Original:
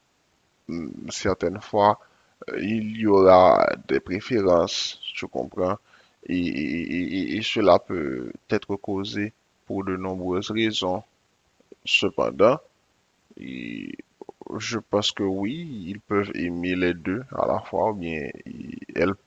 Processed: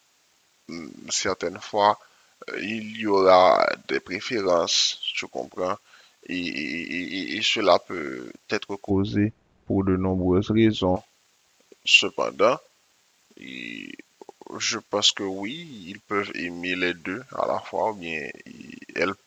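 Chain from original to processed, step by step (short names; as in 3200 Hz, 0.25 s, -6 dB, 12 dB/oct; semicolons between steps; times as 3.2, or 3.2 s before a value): tilt +3 dB/oct, from 8.89 s -3 dB/oct, from 10.95 s +3 dB/oct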